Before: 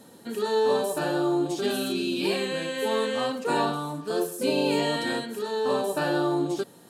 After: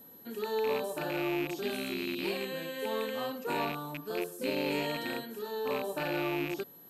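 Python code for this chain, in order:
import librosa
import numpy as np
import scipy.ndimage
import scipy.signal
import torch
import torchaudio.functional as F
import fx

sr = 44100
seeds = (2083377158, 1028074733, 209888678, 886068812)

y = fx.rattle_buzz(x, sr, strikes_db=-33.0, level_db=-19.0)
y = fx.high_shelf(y, sr, hz=8100.0, db=-5.5)
y = y + 10.0 ** (-44.0 / 20.0) * np.sin(2.0 * np.pi * 12000.0 * np.arange(len(y)) / sr)
y = y * 10.0 ** (-8.0 / 20.0)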